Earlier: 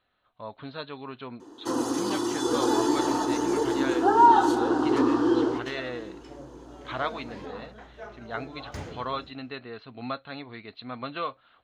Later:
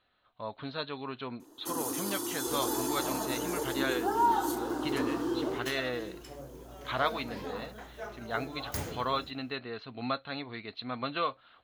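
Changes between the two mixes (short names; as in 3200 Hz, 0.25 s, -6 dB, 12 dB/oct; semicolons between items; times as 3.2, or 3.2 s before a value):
first sound -10.0 dB; master: remove air absorption 110 m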